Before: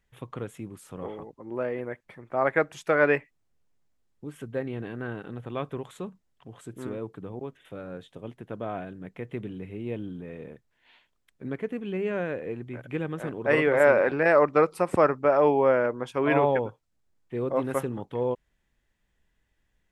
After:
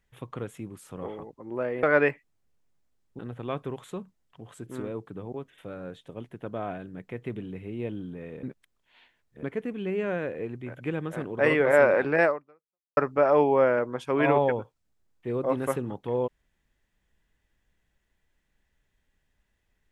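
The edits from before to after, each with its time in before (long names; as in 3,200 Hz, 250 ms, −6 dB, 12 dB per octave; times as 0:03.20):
0:01.83–0:02.90: remove
0:04.26–0:05.26: remove
0:10.50–0:11.50: reverse
0:14.32–0:15.04: fade out exponential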